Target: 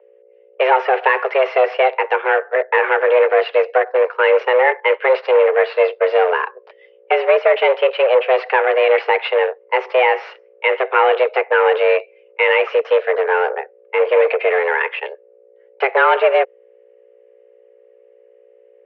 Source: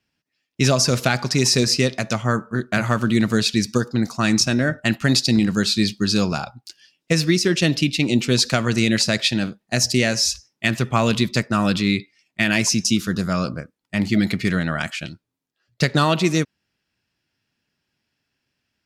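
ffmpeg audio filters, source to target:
-af "aeval=exprs='val(0)+0.00562*(sin(2*PI*60*n/s)+sin(2*PI*2*60*n/s)/2+sin(2*PI*3*60*n/s)/3+sin(2*PI*4*60*n/s)/4+sin(2*PI*5*60*n/s)/5)':c=same,aeval=exprs='0.158*(cos(1*acos(clip(val(0)/0.158,-1,1)))-cos(1*PI/2))+0.0224*(cos(5*acos(clip(val(0)/0.158,-1,1)))-cos(5*PI/2))+0.02*(cos(7*acos(clip(val(0)/0.158,-1,1)))-cos(7*PI/2))+0.00891*(cos(8*acos(clip(val(0)/0.158,-1,1)))-cos(8*PI/2))':c=same,highpass=f=190:t=q:w=0.5412,highpass=f=190:t=q:w=1.307,lowpass=f=2.3k:t=q:w=0.5176,lowpass=f=2.3k:t=q:w=0.7071,lowpass=f=2.3k:t=q:w=1.932,afreqshift=260,volume=8dB"

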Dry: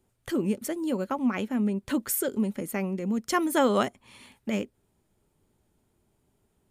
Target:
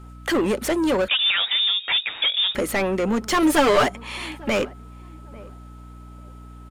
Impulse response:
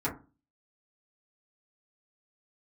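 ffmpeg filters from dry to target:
-filter_complex "[0:a]equalizer=f=100:t=o:w=2.1:g=-10.5,asplit=2[a][b];[b]highpass=f=720:p=1,volume=29dB,asoftclip=type=tanh:threshold=-12dB[c];[a][c]amix=inputs=2:normalize=0,lowpass=f=3k:p=1,volume=-6dB,aeval=exprs='val(0)+0.00316*sin(2*PI*1300*n/s)':c=same,asettb=1/sr,asplit=3[d][e][f];[d]atrim=end=3.424[g];[e]atrim=start=3.42:end=3.86,asetpts=PTS-STARTPTS,afade=t=in:d=0.004:c=qsin,afade=t=out:st=0.436:d=0.004:c=qsin,aecho=1:1:6.8:0.75,atrim=end_sample=19404[h];[f]atrim=start=3.856[i];[g][h]acrossfade=d=0.004:c1=hsin:c2=qsin[j];[j][i]acrossfade=d=0.004:c1=qsin:c2=hsin,aeval=exprs='val(0)+0.01*(sin(2*PI*60*n/s)+sin(2*PI*2*60*n/s)/2+sin(2*PI*3*60*n/s)/3+sin(2*PI*4*60*n/s)/4+sin(2*PI*5*60*n/s)/5)':c=same,asplit=2[k][l];[l]adelay=846,lowpass=f=1k:p=1,volume=-20.5dB,asplit=2[m][n];[n]adelay=846,lowpass=f=1k:p=1,volume=0.25[o];[m][o]amix=inputs=2:normalize=0[p];[k][p]amix=inputs=2:normalize=0,asettb=1/sr,asplit=3[q][r][s];[q]atrim=end=1.084[t];[r]atrim=start=1.08:end=2.55,asetpts=PTS-STARTPTS,afade=t=in:d=0.004:c=qsin,afade=t=out:st=1.466:d=0.004:c=qsin,lowpass=f=3.2k:t=q:w=0.5098,lowpass=f=3.2k:t=q:w=0.6013,lowpass=f=3.2k:t=q:w=0.9,lowpass=f=3.2k:t=q:w=2.563,afreqshift=-3800[u];[s]atrim=start=2.546[v];[t][u]acrossfade=d=0.004:c1=hsin:c2=qsin[w];[w][v]acrossfade=d=0.004:c1=qsin:c2=hsin"

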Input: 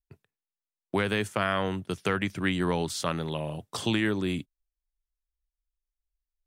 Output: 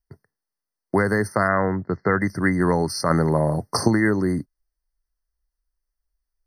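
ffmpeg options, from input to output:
-filter_complex "[0:a]asplit=3[a][b][c];[a]afade=t=out:st=1.47:d=0.02[d];[b]lowpass=f=3k:w=0.5412,lowpass=f=3k:w=1.3066,afade=t=in:st=1.47:d=0.02,afade=t=out:st=2.19:d=0.02[e];[c]afade=t=in:st=2.19:d=0.02[f];[d][e][f]amix=inputs=3:normalize=0,asettb=1/sr,asplit=3[g][h][i];[g]atrim=end=3.104[j];[h]atrim=start=3.1:end=3.88,asetpts=PTS-STARTPTS,afade=t=in:d=0.004:c=qsin,afade=t=out:st=0.776:d=0.004:c=qsin,acontrast=33[k];[i]atrim=start=3.876[l];[j][k]acrossfade=d=0.004:c1=hsin:c2=qsin[m];[m][l]acrossfade=d=0.004:c1=qsin:c2=hsin,afftfilt=real='re*eq(mod(floor(b*sr/1024/2100),2),0)':imag='im*eq(mod(floor(b*sr/1024/2100),2),0)':win_size=1024:overlap=0.75,volume=7.5dB"

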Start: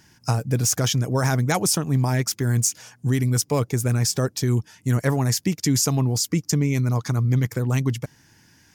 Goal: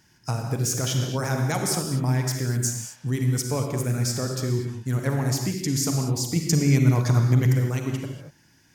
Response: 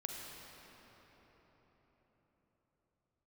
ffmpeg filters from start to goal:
-filter_complex "[0:a]asettb=1/sr,asplit=3[a][b][c];[a]atrim=end=6.364[d];[b]atrim=start=6.36:end=7.53,asetpts=PTS-STARTPTS,afade=t=in:d=0.004:c=qsin,afade=t=out:st=1.166:d=0.004:c=qsin,acontrast=54[e];[c]atrim=start=7.526[f];[d][e]acrossfade=d=0.004:c1=hsin:c2=qsin[g];[g][f]acrossfade=d=0.004:c1=qsin:c2=hsin[h];[1:a]atrim=start_sample=2205,afade=t=out:st=0.3:d=0.01,atrim=end_sample=13671[i];[h][i]afir=irnorm=-1:irlink=0,volume=-2dB"

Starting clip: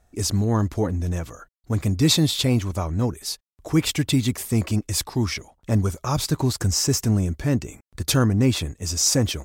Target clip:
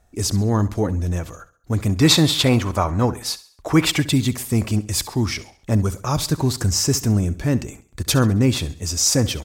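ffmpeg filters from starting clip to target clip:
-filter_complex "[0:a]asettb=1/sr,asplit=3[a][b][c];[a]atrim=end=1.894[d];[b]atrim=start=1.89:end=4,asetpts=PTS-STARTPTS,afade=t=in:d=0.004:c=qsin,afade=t=out:st=2.106:d=0.004:c=qsin,equalizer=f=1.2k:w=0.52:g=9[e];[c]atrim=start=3.996[f];[d][e]acrossfade=d=0.004:c1=hsin:c2=qsin[g];[g][f]acrossfade=d=0.004:c1=qsin:c2=hsin,aecho=1:1:67|134|201|268:0.141|0.0607|0.0261|0.0112,volume=2dB"

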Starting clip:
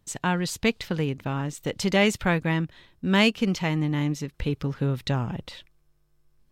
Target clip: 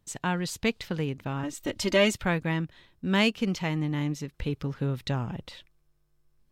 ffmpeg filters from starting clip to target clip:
-filter_complex "[0:a]asettb=1/sr,asplit=3[a][b][c];[a]atrim=end=1.434[d];[b]atrim=start=1.43:end=2.14,asetpts=PTS-STARTPTS,afade=t=in:d=0.004:c=qsin,afade=t=out:st=0.706:d=0.004:c=qsin,aecho=1:1:3.2:0.99,atrim=end_sample=31311[e];[c]atrim=start=2.136[f];[d][e]acrossfade=d=0.004:c1=hsin:c2=qsin[g];[g][f]acrossfade=d=0.004:c1=qsin:c2=hsin,volume=-3.5dB"

